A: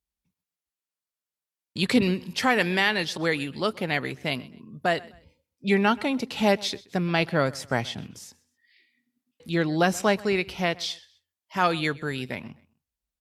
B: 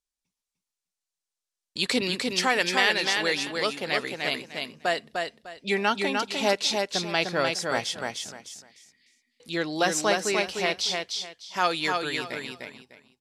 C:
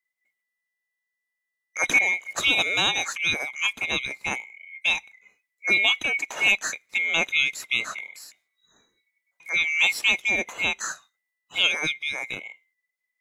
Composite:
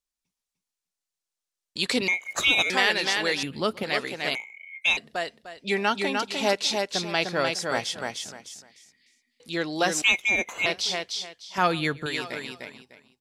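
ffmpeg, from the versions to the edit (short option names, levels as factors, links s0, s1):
-filter_complex "[2:a]asplit=3[s0][s1][s2];[0:a]asplit=2[s3][s4];[1:a]asplit=6[s5][s6][s7][s8][s9][s10];[s5]atrim=end=2.082[s11];[s0]atrim=start=2.078:end=2.702[s12];[s6]atrim=start=2.698:end=3.432[s13];[s3]atrim=start=3.428:end=3.832[s14];[s7]atrim=start=3.828:end=4.352[s15];[s1]atrim=start=4.348:end=4.972[s16];[s8]atrim=start=4.968:end=10.022[s17];[s2]atrim=start=10.018:end=10.662[s18];[s9]atrim=start=10.658:end=11.582[s19];[s4]atrim=start=11.578:end=12.062[s20];[s10]atrim=start=12.058[s21];[s11][s12]acrossfade=d=0.004:c1=hsin:c2=hsin[s22];[s22][s13]acrossfade=d=0.004:c1=hsin:c2=hsin[s23];[s23][s14]acrossfade=d=0.004:c1=hsin:c2=hsin[s24];[s24][s15]acrossfade=d=0.004:c1=hsin:c2=hsin[s25];[s25][s16]acrossfade=d=0.004:c1=hsin:c2=hsin[s26];[s26][s17]acrossfade=d=0.004:c1=hsin:c2=hsin[s27];[s27][s18]acrossfade=d=0.004:c1=hsin:c2=hsin[s28];[s28][s19]acrossfade=d=0.004:c1=hsin:c2=hsin[s29];[s29][s20]acrossfade=d=0.004:c1=hsin:c2=hsin[s30];[s30][s21]acrossfade=d=0.004:c1=hsin:c2=hsin"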